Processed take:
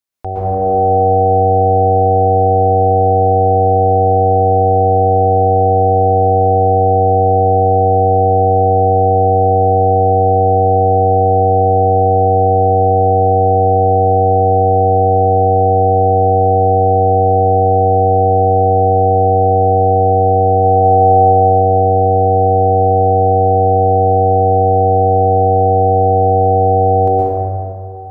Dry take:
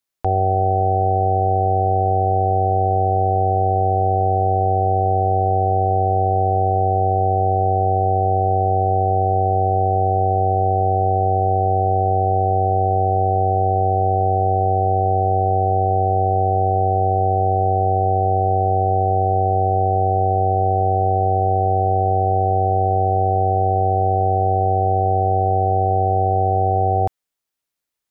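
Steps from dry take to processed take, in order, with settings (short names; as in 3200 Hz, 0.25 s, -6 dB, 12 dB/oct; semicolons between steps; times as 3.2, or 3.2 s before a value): 20.64–21.12 bell 840 Hz +6 dB 0.77 oct; plate-style reverb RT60 2.7 s, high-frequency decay 0.3×, pre-delay 0.105 s, DRR -8 dB; gain -3.5 dB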